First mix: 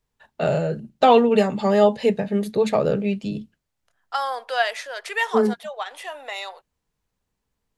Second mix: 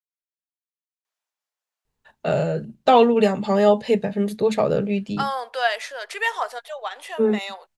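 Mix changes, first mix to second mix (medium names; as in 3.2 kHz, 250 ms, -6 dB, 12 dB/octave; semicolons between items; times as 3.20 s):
first voice: entry +1.85 s; second voice: entry +1.05 s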